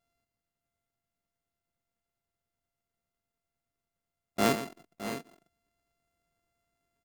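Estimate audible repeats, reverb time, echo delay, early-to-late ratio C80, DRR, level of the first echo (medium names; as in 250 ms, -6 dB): 3, no reverb, 118 ms, no reverb, no reverb, -11.5 dB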